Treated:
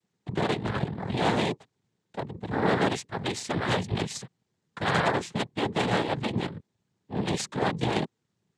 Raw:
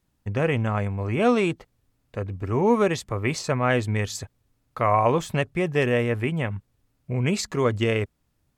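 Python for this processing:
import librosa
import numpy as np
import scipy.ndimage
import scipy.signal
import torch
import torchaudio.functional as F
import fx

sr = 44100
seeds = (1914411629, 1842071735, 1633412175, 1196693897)

y = x * np.sin(2.0 * np.pi * 59.0 * np.arange(len(x)) / sr)
y = fx.cheby_harmonics(y, sr, harmonics=(5, 6), levels_db=(-16, -8), full_scale_db=-8.5)
y = fx.noise_vocoder(y, sr, seeds[0], bands=6)
y = y * 10.0 ** (-6.0 / 20.0)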